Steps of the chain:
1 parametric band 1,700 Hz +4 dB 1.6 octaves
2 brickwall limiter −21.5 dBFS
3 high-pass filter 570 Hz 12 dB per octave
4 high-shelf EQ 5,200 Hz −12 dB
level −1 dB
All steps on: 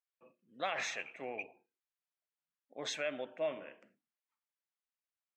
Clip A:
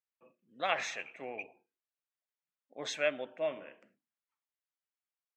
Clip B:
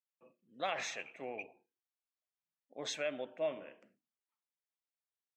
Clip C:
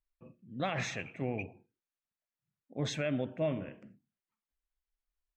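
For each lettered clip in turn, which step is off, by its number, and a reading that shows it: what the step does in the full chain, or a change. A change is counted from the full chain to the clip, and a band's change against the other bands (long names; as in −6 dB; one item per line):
2, change in crest factor +4.0 dB
1, 2 kHz band −2.5 dB
3, 125 Hz band +23.5 dB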